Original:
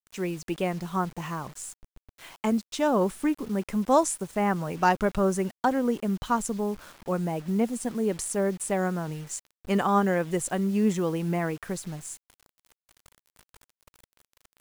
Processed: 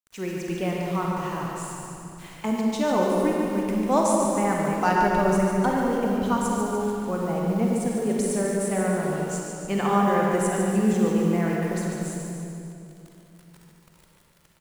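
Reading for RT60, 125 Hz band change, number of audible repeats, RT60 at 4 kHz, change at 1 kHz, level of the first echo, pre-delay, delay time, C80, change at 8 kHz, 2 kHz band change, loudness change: 2.9 s, +4.0 dB, 2, 2.0 s, +3.0 dB, -6.5 dB, 35 ms, 0.146 s, -1.0 dB, +1.5 dB, +3.0 dB, +3.0 dB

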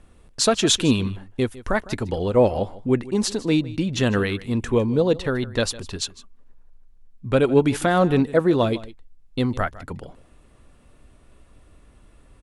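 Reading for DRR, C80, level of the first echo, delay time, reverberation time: none, none, -18.5 dB, 0.155 s, none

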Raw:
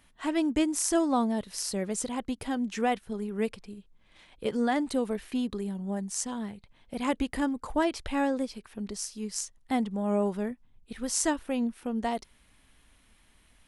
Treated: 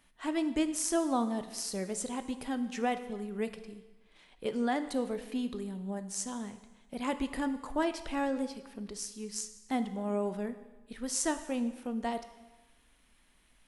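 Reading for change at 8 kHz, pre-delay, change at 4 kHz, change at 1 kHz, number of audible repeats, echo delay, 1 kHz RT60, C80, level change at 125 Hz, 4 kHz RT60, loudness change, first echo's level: -3.5 dB, 7 ms, -3.5 dB, -3.5 dB, none, none, 1.2 s, 14.0 dB, n/a, 1.1 s, -4.0 dB, none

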